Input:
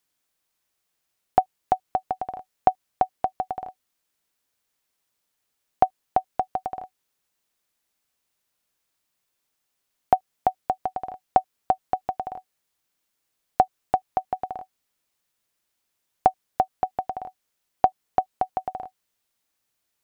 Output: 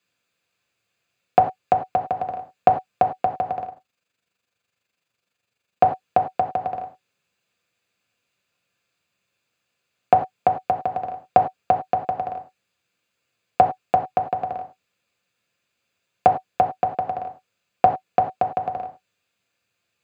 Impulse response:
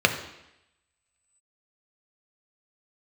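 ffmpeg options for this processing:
-filter_complex "[1:a]atrim=start_sample=2205,afade=t=out:st=0.16:d=0.01,atrim=end_sample=7497[a];[0:a][a]afir=irnorm=-1:irlink=0,asettb=1/sr,asplit=3[b][c][d];[b]atrim=end=3.654[e];[c]atrim=start=3.65:end=5.83,asetpts=PTS-STARTPTS,afade=t=in:d=0.004:c=qsin,afade=t=out:st=2.176:d=0.004:c=qsin,tremolo=f=24:d=0.621[f];[d]atrim=start=5.826[g];[e][f]acrossfade=d=0.004:c1=hsin:c2=qsin[h];[h][g]acrossfade=d=0.004:c1=qsin:c2=hsin,volume=-10dB"

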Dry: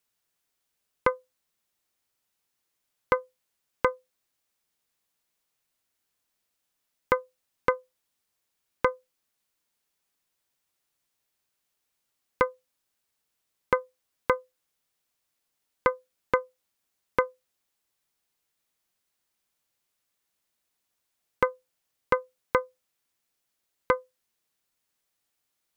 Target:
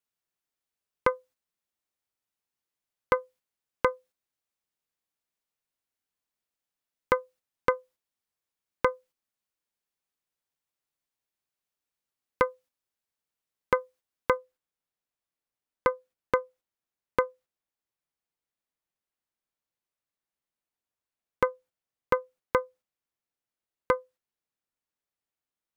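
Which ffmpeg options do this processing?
-af "asetnsamples=n=441:p=0,asendcmd='14.37 highshelf g -9',highshelf=f=2.6k:g=-3.5,agate=range=-8dB:threshold=-53dB:ratio=16:detection=peak"

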